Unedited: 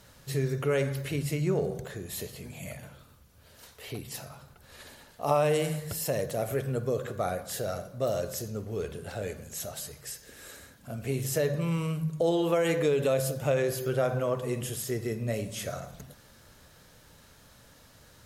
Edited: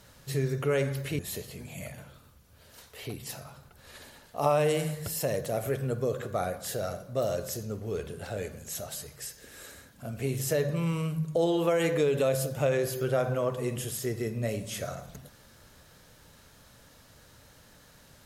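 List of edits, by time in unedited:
0:01.19–0:02.04: remove

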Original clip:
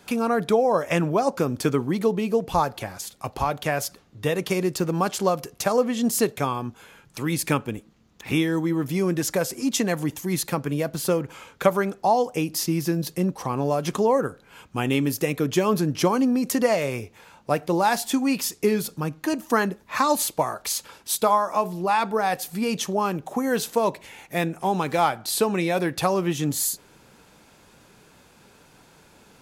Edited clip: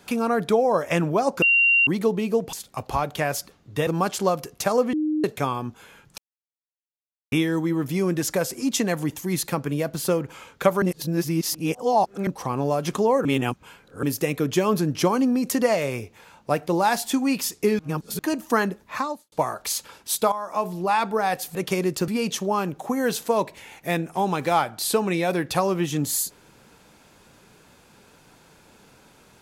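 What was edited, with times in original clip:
0:01.42–0:01.87: beep over 2,760 Hz −14.5 dBFS
0:02.53–0:03.00: remove
0:04.34–0:04.87: move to 0:22.55
0:05.93–0:06.24: beep over 307 Hz −20.5 dBFS
0:07.18–0:08.32: silence
0:11.82–0:13.27: reverse
0:14.25–0:15.03: reverse
0:18.79–0:19.19: reverse
0:19.81–0:20.32: fade out and dull
0:21.32–0:21.69: fade in, from −14.5 dB

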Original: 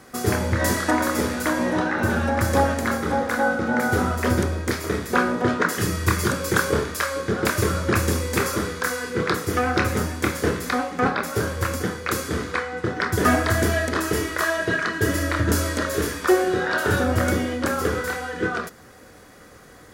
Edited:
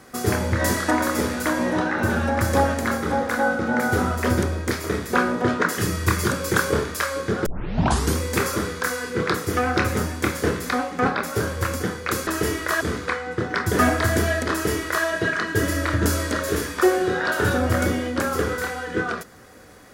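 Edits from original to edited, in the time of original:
0:07.46: tape start 0.71 s
0:13.97–0:14.51: duplicate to 0:12.27

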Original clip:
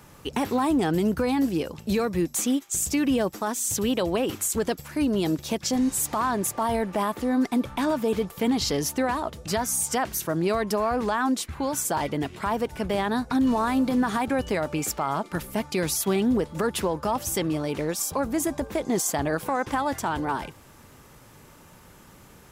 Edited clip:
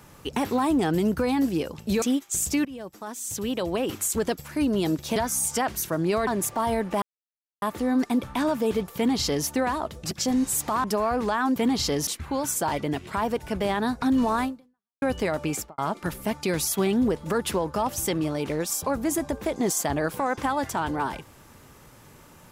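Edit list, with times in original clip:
0:02.02–0:02.42: remove
0:03.05–0:04.46: fade in, from −19 dB
0:05.56–0:06.29: swap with 0:09.53–0:10.64
0:07.04: splice in silence 0.60 s
0:08.38–0:08.89: duplicate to 0:11.36
0:13.73–0:14.31: fade out exponential
0:14.82–0:15.07: fade out and dull

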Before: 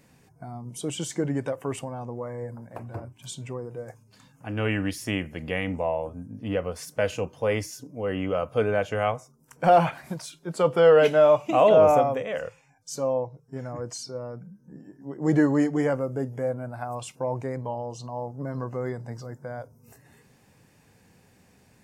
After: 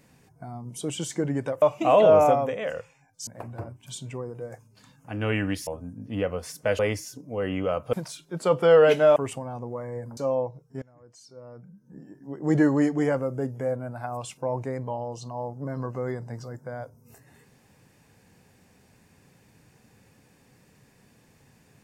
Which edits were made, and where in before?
0:01.62–0:02.63: swap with 0:11.30–0:12.95
0:05.03–0:06.00: remove
0:07.12–0:07.45: remove
0:08.59–0:10.07: remove
0:13.60–0:14.77: fade in quadratic, from −22.5 dB

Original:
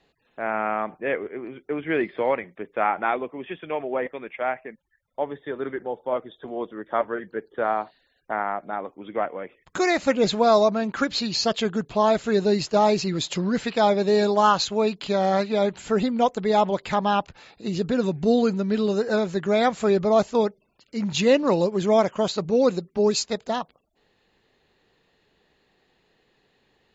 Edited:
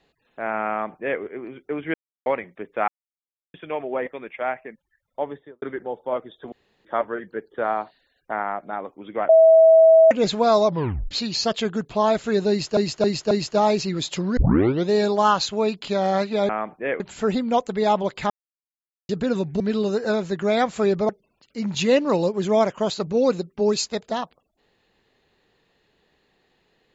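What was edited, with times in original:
0:00.70–0:01.21: duplicate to 0:15.68
0:01.94–0:02.26: silence
0:02.88–0:03.54: silence
0:05.27–0:05.62: fade out and dull
0:06.52–0:06.85: fill with room tone
0:09.29–0:10.11: beep over 648 Hz −8.5 dBFS
0:10.66: tape stop 0.45 s
0:12.50–0:12.77: repeat, 4 plays
0:13.56: tape start 0.51 s
0:16.98–0:17.77: silence
0:18.28–0:18.64: remove
0:20.13–0:20.47: remove

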